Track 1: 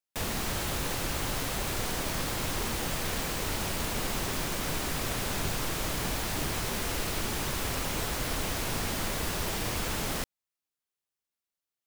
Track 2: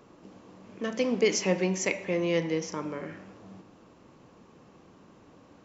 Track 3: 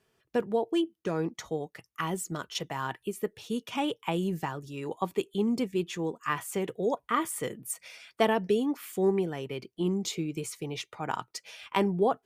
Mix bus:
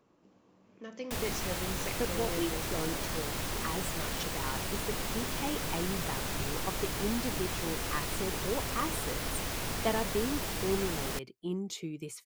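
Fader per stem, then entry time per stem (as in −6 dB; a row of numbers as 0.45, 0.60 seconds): −3.5, −13.0, −6.5 decibels; 0.95, 0.00, 1.65 seconds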